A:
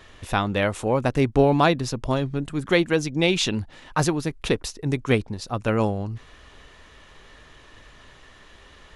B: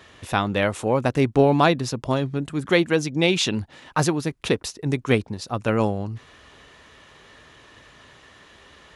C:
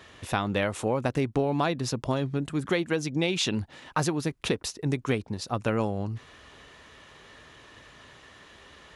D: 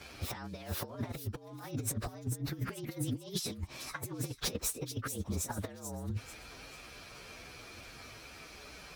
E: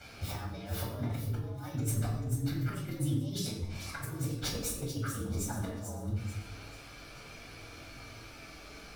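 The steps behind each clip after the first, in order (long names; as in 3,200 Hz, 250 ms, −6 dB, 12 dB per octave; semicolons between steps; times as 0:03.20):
high-pass filter 84 Hz 12 dB per octave; level +1 dB
downward compressor 5 to 1, threshold −21 dBFS, peak gain reduction 9 dB; level −1.5 dB
partials spread apart or drawn together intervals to 115%; compressor whose output falls as the input rises −36 dBFS, ratio −0.5; delay with a high-pass on its return 439 ms, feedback 37%, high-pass 4,300 Hz, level −7 dB; level −1.5 dB
tuned comb filter 290 Hz, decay 0.72 s; convolution reverb RT60 0.75 s, pre-delay 13 ms, DRR −1 dB; level +2.5 dB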